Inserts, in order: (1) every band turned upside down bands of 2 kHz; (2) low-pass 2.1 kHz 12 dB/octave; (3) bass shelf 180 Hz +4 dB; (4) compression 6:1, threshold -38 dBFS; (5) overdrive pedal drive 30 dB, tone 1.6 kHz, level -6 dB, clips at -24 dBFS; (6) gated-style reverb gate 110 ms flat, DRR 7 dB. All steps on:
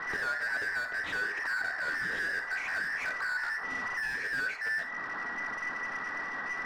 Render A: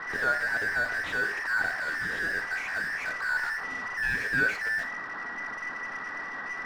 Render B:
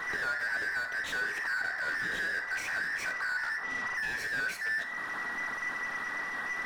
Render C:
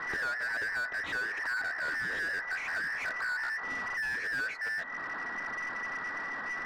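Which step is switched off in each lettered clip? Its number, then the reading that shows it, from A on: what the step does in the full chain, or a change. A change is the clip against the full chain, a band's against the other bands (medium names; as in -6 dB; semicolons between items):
4, mean gain reduction 7.5 dB; 2, 8 kHz band +4.5 dB; 6, crest factor change -2.5 dB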